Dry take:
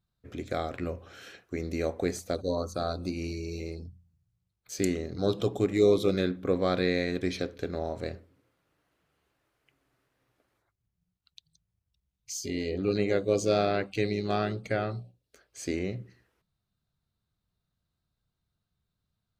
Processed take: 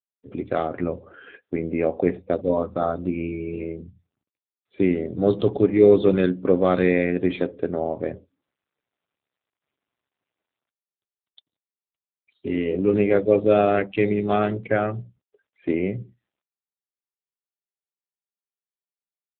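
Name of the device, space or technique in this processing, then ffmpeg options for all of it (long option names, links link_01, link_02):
mobile call with aggressive noise cancelling: -filter_complex "[0:a]asplit=3[link_01][link_02][link_03];[link_01]afade=type=out:start_time=0.71:duration=0.02[link_04];[link_02]aemphasis=mode=reproduction:type=50fm,afade=type=in:start_time=0.71:duration=0.02,afade=type=out:start_time=1.29:duration=0.02[link_05];[link_03]afade=type=in:start_time=1.29:duration=0.02[link_06];[link_04][link_05][link_06]amix=inputs=3:normalize=0,highpass=110,afftdn=noise_reduction=32:noise_floor=-48,volume=8.5dB" -ar 8000 -c:a libopencore_amrnb -b:a 7950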